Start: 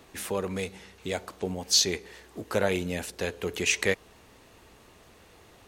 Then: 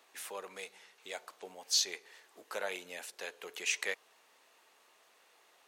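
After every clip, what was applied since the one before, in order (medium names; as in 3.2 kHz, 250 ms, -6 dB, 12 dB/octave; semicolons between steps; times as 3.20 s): high-pass 680 Hz 12 dB/octave; trim -7.5 dB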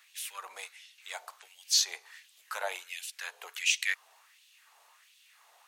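treble shelf 5.3 kHz +6.5 dB; LFO high-pass sine 1.4 Hz 730–3200 Hz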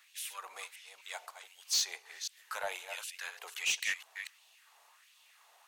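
chunks repeated in reverse 253 ms, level -10 dB; saturation -21.5 dBFS, distortion -13 dB; trim -2 dB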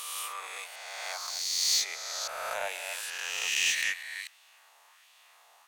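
reverse spectral sustain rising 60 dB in 2.08 s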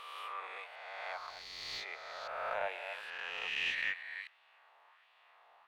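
distance through air 450 m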